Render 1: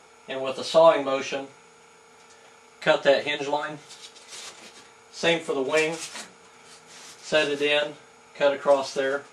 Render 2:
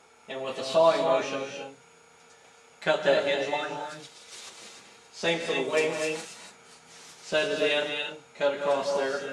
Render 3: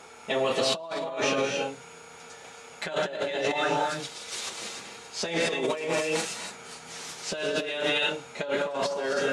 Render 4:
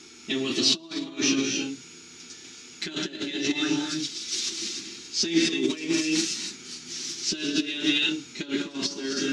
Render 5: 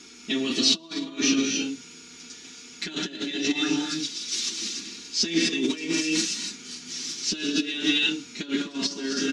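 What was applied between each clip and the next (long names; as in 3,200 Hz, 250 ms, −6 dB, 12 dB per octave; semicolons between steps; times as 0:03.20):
reverb whose tail is shaped and stops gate 310 ms rising, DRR 3.5 dB; level −4.5 dB
compressor whose output falls as the input rises −33 dBFS, ratio −1; level +4 dB
drawn EQ curve 170 Hz 0 dB, 340 Hz +13 dB, 500 Hz −20 dB, 850 Hz −16 dB, 1,500 Hz −6 dB, 5,700 Hz +11 dB, 9,100 Hz −5 dB
comb filter 4.2 ms, depth 45%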